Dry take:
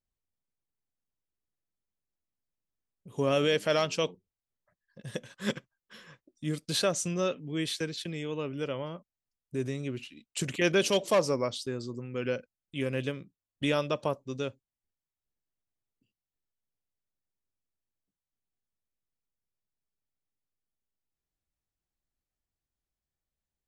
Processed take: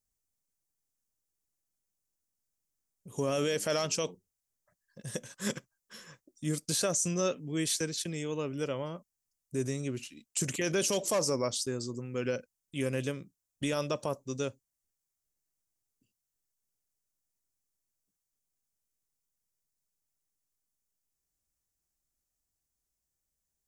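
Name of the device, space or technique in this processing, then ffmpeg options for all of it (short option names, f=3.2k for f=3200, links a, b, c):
over-bright horn tweeter: -af "highshelf=f=4.8k:t=q:w=1.5:g=9,alimiter=limit=-20.5dB:level=0:latency=1:release=25"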